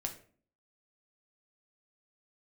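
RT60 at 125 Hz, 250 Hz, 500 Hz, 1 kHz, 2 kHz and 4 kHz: 0.55 s, 0.65 s, 0.50 s, 0.40 s, 0.40 s, 0.30 s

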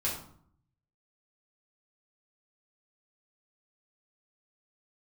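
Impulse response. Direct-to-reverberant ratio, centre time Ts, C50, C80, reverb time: -6.0 dB, 35 ms, 5.0 dB, 8.5 dB, 0.60 s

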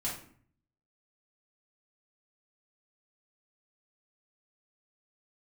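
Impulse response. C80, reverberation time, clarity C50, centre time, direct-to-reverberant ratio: 9.5 dB, 0.55 s, 5.0 dB, 35 ms, -7.0 dB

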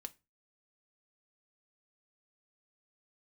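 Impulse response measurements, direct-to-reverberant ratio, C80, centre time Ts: 7.5 dB, 30.5 dB, 3 ms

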